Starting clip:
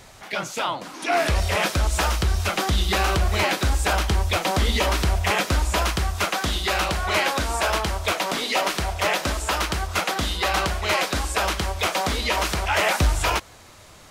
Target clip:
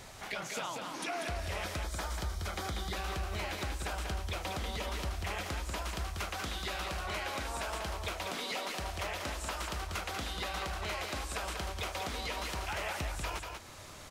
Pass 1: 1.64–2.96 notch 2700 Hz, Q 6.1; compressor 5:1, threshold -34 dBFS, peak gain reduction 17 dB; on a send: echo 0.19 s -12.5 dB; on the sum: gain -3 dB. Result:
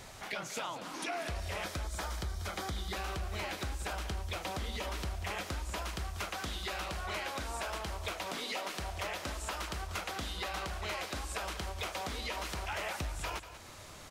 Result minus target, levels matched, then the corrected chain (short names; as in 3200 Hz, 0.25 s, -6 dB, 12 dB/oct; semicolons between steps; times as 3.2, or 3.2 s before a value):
echo-to-direct -7.5 dB
1.64–2.96 notch 2700 Hz, Q 6.1; compressor 5:1, threshold -34 dBFS, peak gain reduction 17 dB; on a send: echo 0.19 s -5 dB; on the sum: gain -3 dB